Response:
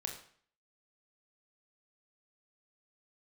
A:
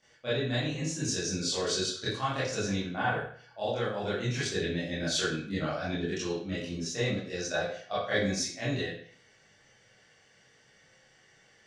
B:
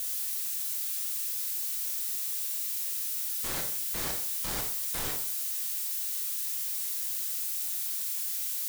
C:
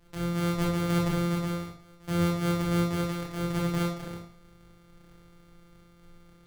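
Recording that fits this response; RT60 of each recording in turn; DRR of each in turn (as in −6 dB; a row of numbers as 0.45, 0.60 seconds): B; 0.55, 0.55, 0.55 seconds; −11.5, 2.0, −4.0 decibels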